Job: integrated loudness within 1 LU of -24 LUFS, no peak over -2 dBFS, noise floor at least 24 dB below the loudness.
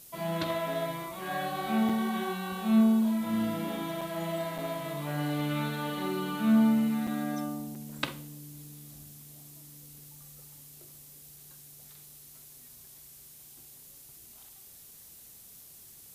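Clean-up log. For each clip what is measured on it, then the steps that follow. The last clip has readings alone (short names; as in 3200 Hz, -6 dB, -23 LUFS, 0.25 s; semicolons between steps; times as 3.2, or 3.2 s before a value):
dropouts 5; longest dropout 5.0 ms; noise floor -52 dBFS; noise floor target -54 dBFS; loudness -30.0 LUFS; peak -13.0 dBFS; loudness target -24.0 LUFS
-> interpolate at 1.89/4.01/4.58/7.07/7.75, 5 ms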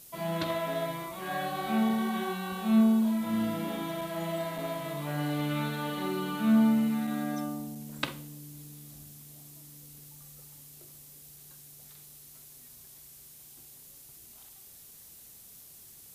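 dropouts 0; noise floor -52 dBFS; noise floor target -54 dBFS
-> denoiser 6 dB, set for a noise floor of -52 dBFS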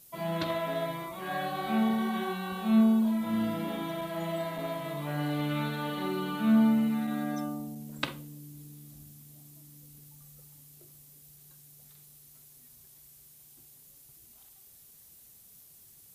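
noise floor -56 dBFS; loudness -30.0 LUFS; peak -13.0 dBFS; loudness target -24.0 LUFS
-> gain +6 dB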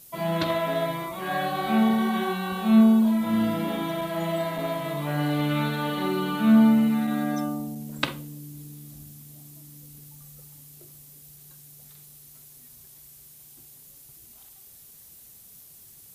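loudness -24.0 LUFS; peak -7.0 dBFS; noise floor -50 dBFS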